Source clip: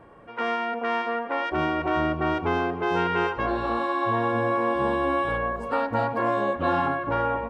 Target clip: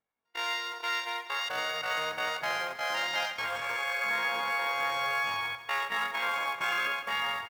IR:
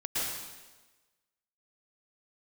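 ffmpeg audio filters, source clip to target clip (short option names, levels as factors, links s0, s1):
-filter_complex "[0:a]agate=range=0.02:threshold=0.0398:ratio=16:detection=peak,acrossover=split=350[s0][s1];[s0]acompressor=threshold=0.00398:ratio=4[s2];[s2][s1]amix=inputs=2:normalize=0,asplit=2[s3][s4];[s4]asetrate=33038,aresample=44100,atempo=1.33484,volume=0.631[s5];[s3][s5]amix=inputs=2:normalize=0,acrusher=bits=4:mode=log:mix=0:aa=0.000001,asetrate=88200,aresample=44100,atempo=0.5,aecho=1:1:158|316|474|632|790:0.2|0.104|0.054|0.0281|0.0146,volume=0.447"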